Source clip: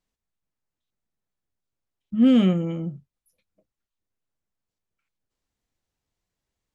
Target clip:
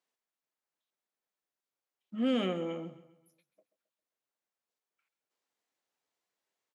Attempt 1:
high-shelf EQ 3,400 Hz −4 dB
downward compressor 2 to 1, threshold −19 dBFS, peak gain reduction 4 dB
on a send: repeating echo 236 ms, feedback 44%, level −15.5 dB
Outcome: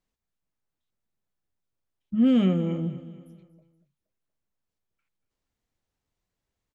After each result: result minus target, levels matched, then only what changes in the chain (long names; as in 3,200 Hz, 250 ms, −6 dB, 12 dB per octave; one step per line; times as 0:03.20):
echo 102 ms late; 500 Hz band −6.0 dB
change: repeating echo 134 ms, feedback 44%, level −15.5 dB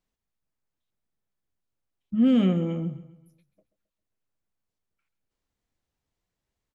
500 Hz band −6.0 dB
add after downward compressor: high-pass filter 450 Hz 12 dB per octave